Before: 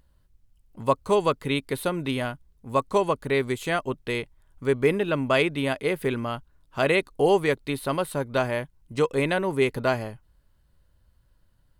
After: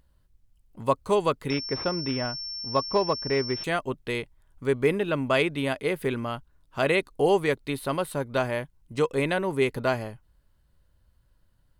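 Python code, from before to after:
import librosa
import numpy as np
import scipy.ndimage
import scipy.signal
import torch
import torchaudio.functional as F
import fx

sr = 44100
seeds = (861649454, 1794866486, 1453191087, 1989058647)

y = fx.pwm(x, sr, carrier_hz=5400.0, at=(1.5, 3.64))
y = y * librosa.db_to_amplitude(-1.5)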